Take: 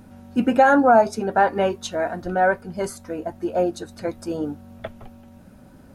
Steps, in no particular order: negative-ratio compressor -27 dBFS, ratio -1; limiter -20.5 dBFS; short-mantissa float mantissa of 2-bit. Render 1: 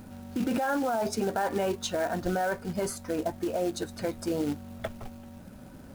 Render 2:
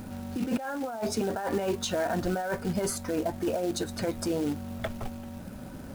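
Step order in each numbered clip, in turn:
short-mantissa float > limiter > negative-ratio compressor; negative-ratio compressor > short-mantissa float > limiter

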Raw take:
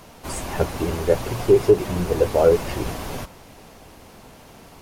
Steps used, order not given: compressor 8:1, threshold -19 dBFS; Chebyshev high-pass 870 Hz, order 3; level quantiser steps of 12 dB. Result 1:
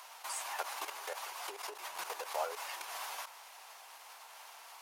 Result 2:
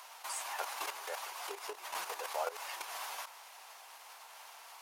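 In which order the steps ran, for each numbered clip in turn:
compressor > level quantiser > Chebyshev high-pass; level quantiser > compressor > Chebyshev high-pass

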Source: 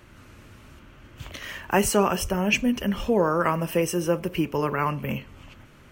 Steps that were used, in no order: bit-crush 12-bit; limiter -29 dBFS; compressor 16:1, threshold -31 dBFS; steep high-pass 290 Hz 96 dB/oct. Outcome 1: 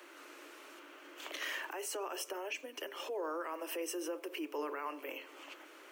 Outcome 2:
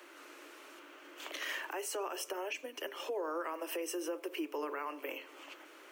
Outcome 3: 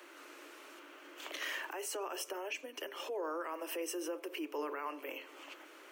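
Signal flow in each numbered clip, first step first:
compressor > limiter > bit-crush > steep high-pass; compressor > steep high-pass > limiter > bit-crush; bit-crush > compressor > limiter > steep high-pass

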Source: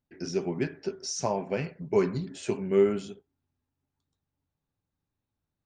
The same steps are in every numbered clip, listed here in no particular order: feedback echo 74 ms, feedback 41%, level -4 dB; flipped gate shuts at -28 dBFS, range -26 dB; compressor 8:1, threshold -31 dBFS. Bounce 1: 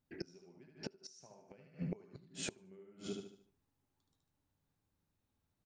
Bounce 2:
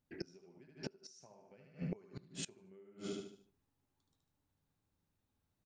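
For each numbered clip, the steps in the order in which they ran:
compressor > feedback echo > flipped gate; feedback echo > compressor > flipped gate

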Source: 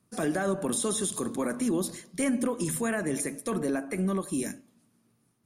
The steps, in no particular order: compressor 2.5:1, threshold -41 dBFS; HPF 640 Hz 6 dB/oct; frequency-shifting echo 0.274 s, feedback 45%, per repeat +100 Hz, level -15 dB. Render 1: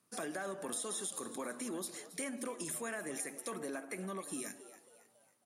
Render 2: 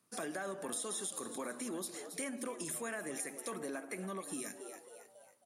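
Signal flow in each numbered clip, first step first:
HPF > compressor > frequency-shifting echo; frequency-shifting echo > HPF > compressor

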